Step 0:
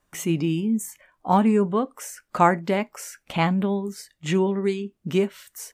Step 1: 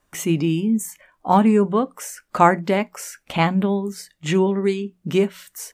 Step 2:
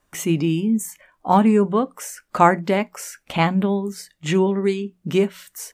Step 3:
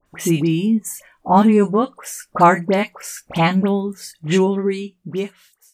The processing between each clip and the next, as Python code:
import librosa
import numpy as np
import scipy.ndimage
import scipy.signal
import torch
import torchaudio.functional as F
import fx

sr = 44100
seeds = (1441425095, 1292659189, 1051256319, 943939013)

y1 = fx.hum_notches(x, sr, base_hz=60, count=3)
y1 = y1 * 10.0 ** (3.5 / 20.0)
y2 = y1
y3 = fx.fade_out_tail(y2, sr, length_s=1.36)
y3 = fx.dispersion(y3, sr, late='highs', ms=63.0, hz=2000.0)
y3 = y3 * 10.0 ** (2.5 / 20.0)